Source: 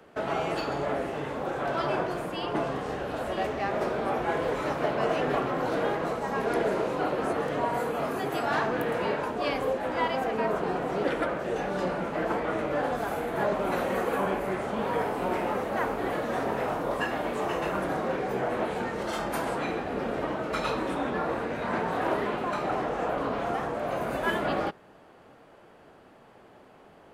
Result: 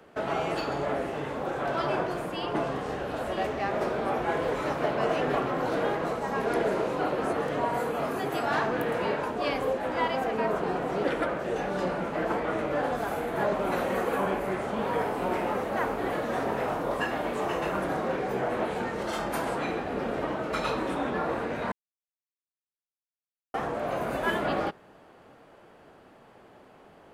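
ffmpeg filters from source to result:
-filter_complex "[0:a]asplit=3[s0][s1][s2];[s0]atrim=end=21.72,asetpts=PTS-STARTPTS,afade=t=out:st=21.716:d=0.004:c=hsin[s3];[s1]atrim=start=21.72:end=23.54,asetpts=PTS-STARTPTS,volume=0[s4];[s2]atrim=start=23.54,asetpts=PTS-STARTPTS,afade=t=in:d=0.004:c=hsin[s5];[s3][s4][s5]concat=n=3:v=0:a=1"

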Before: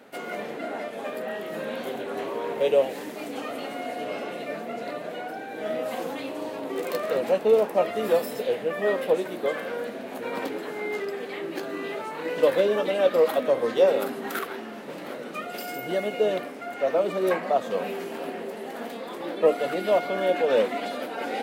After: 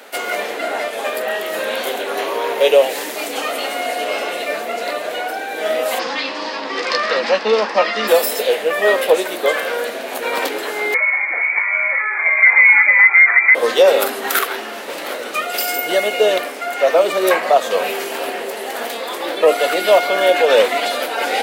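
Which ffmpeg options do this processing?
-filter_complex "[0:a]asettb=1/sr,asplit=3[s0][s1][s2];[s0]atrim=end=2.084[s3];[s1]atrim=start=2.08:end=2.79,asetpts=PTS-STARTPTS,afade=t=in:d=0.004:c=qsin,afade=t=out:st=0.706:d=0.004:c=qsin,bandreject=f=7900:w=7.8[s4];[s2]atrim=start=2.786[s5];[s3][s4]acrossfade=d=0.004:c1=hsin:c2=qsin[s6];[s6][s5]acrossfade=d=0.004:c1=qsin:c2=hsin,asplit=3[s7][s8][s9];[s7]afade=t=out:st=5.98:d=0.02[s10];[s8]highpass=200,equalizer=f=210:t=q:w=4:g=10,equalizer=f=410:t=q:w=4:g=-7,equalizer=f=650:t=q:w=4:g=-7,equalizer=f=1100:t=q:w=4:g=4,equalizer=f=1800:t=q:w=4:g=5,equalizer=f=5000:t=q:w=4:g=10,lowpass=f=5500:w=0.5412,lowpass=f=5500:w=1.3066,afade=t=in:st=5.98:d=0.02,afade=t=out:st=8.07:d=0.02[s11];[s9]afade=t=in:st=8.07:d=0.02[s12];[s10][s11][s12]amix=inputs=3:normalize=0,asettb=1/sr,asplit=3[s13][s14][s15];[s13]atrim=end=10.944[s16];[s14]atrim=start=10.94:end=13.55,asetpts=PTS-STARTPTS,afade=t=in:d=0.004:c=qsin,afade=t=out:st=2.606:d=0.004:c=qsin,lowpass=f=2200:t=q:w=0.5098,lowpass=f=2200:t=q:w=0.6013,lowpass=f=2200:t=q:w=0.9,lowpass=f=2200:t=q:w=2.563,afreqshift=-2600[s17];[s15]atrim=start=13.546[s18];[s16][s17]acrossfade=d=0.004:c1=hsin:c2=qsin[s19];[s19][s18]acrossfade=d=0.004:c1=qsin:c2=hsin,highpass=450,highshelf=f=2400:g=8.5,alimiter=level_in=3.98:limit=0.891:release=50:level=0:latency=1,volume=0.891"

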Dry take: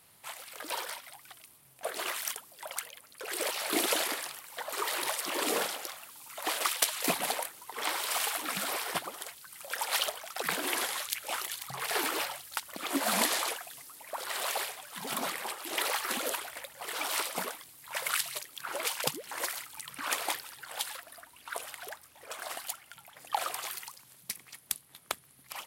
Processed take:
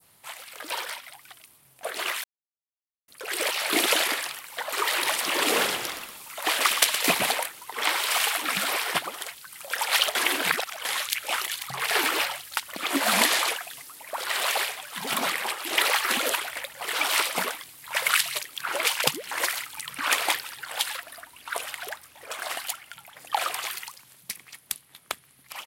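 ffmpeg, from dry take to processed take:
-filter_complex "[0:a]asplit=3[s0][s1][s2];[s0]afade=t=out:st=5.1:d=0.02[s3];[s1]asplit=6[s4][s5][s6][s7][s8][s9];[s5]adelay=118,afreqshift=-55,volume=0.335[s10];[s6]adelay=236,afreqshift=-110,volume=0.155[s11];[s7]adelay=354,afreqshift=-165,volume=0.0708[s12];[s8]adelay=472,afreqshift=-220,volume=0.0327[s13];[s9]adelay=590,afreqshift=-275,volume=0.015[s14];[s4][s10][s11][s12][s13][s14]amix=inputs=6:normalize=0,afade=t=in:st=5.1:d=0.02,afade=t=out:st=7.3:d=0.02[s15];[s2]afade=t=in:st=7.3:d=0.02[s16];[s3][s15][s16]amix=inputs=3:normalize=0,asplit=5[s17][s18][s19][s20][s21];[s17]atrim=end=2.24,asetpts=PTS-STARTPTS,afade=t=out:st=2.236:d=0.004:c=hsin[s22];[s18]atrim=start=2.24:end=3.08,asetpts=PTS-STARTPTS,volume=0[s23];[s19]atrim=start=3.08:end=10.152,asetpts=PTS-STARTPTS,afade=t=in:d=0.004:c=hsin[s24];[s20]atrim=start=10.148:end=10.852,asetpts=PTS-STARTPTS,areverse[s25];[s21]atrim=start=10.848[s26];[s22][s23][s24]concat=n=3:v=0:a=1[s27];[s27][s25]acrossfade=d=0.004:c1=hsin:c2=hsin[s28];[s28][s26]acrossfade=d=0.004:c1=hsin:c2=hsin,adynamicequalizer=threshold=0.00447:dfrequency=2400:dqfactor=0.71:tfrequency=2400:tqfactor=0.71:attack=5:release=100:ratio=0.375:range=3:mode=boostabove:tftype=bell,dynaudnorm=f=520:g=13:m=1.58,volume=1.19"

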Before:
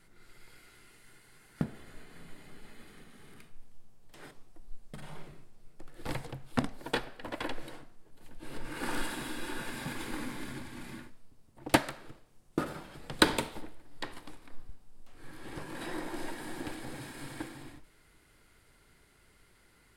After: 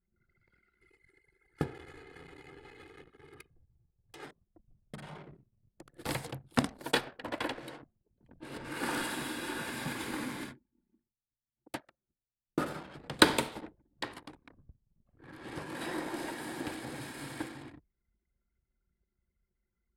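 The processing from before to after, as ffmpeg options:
-filter_complex "[0:a]asettb=1/sr,asplit=3[s0][s1][s2];[s0]atrim=end=0.814[s3];[s1]atrim=start=0.81:end=4.25,asetpts=PTS-STARTPTS,afade=t=in:d=0.004:c=qsin,afade=t=out:st=3.436:d=0.004:c=qsin,aecho=1:1:2.4:0.98,atrim=end_sample=151704[s4];[s2]atrim=start=4.246[s5];[s3][s4]acrossfade=d=0.004:c1=hsin:c2=qsin[s6];[s6][s5]acrossfade=d=0.004:c1=qsin:c2=hsin,asettb=1/sr,asplit=3[s7][s8][s9];[s7]atrim=end=5.344[s10];[s8]atrim=start=5.34:end=7.01,asetpts=PTS-STARTPTS,afade=t=in:d=0.004:c=qsin,afade=t=out:st=1.666:d=0.004:c=qsin,highshelf=f=4000:g=7[s11];[s9]atrim=start=7.006[s12];[s10][s11]acrossfade=d=0.004:c1=hsin:c2=qsin[s13];[s13][s12]acrossfade=d=0.004:c1=qsin:c2=hsin,asplit=3[s14][s15][s16];[s14]atrim=end=10.57,asetpts=PTS-STARTPTS,afade=t=out:st=10.43:d=0.14:silence=0.125893[s17];[s15]atrim=start=10.57:end=12.48,asetpts=PTS-STARTPTS,volume=0.126[s18];[s16]atrim=start=12.48,asetpts=PTS-STARTPTS,afade=t=in:d=0.14:silence=0.125893[s19];[s17][s18][s19]concat=n=3:v=0:a=1,anlmdn=0.00251,highpass=46,lowshelf=f=67:g=-8,volume=1.26"

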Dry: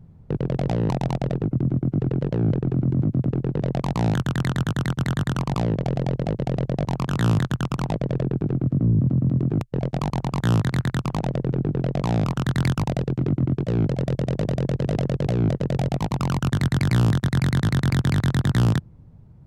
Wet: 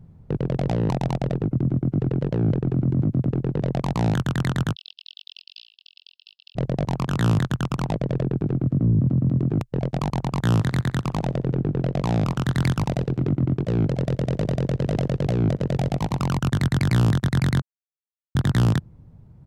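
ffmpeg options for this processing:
-filter_complex "[0:a]asplit=3[s0][s1][s2];[s0]afade=t=out:st=4.74:d=0.02[s3];[s1]asuperpass=centerf=3800:order=20:qfactor=1.4,afade=t=in:st=4.74:d=0.02,afade=t=out:st=6.55:d=0.02[s4];[s2]afade=t=in:st=6.55:d=0.02[s5];[s3][s4][s5]amix=inputs=3:normalize=0,asplit=3[s6][s7][s8];[s6]afade=t=out:st=10.55:d=0.02[s9];[s7]aecho=1:1:63|126|189:0.0668|0.0281|0.0118,afade=t=in:st=10.55:d=0.02,afade=t=out:st=16.24:d=0.02[s10];[s8]afade=t=in:st=16.24:d=0.02[s11];[s9][s10][s11]amix=inputs=3:normalize=0,asplit=3[s12][s13][s14];[s12]atrim=end=17.62,asetpts=PTS-STARTPTS,afade=t=out:st=17.616:d=0.004:c=hsin[s15];[s13]atrim=start=17.62:end=18.35,asetpts=PTS-STARTPTS,volume=0[s16];[s14]atrim=start=18.35,asetpts=PTS-STARTPTS,afade=t=in:d=0.004:c=hsin[s17];[s15][s16][s17]concat=n=3:v=0:a=1"

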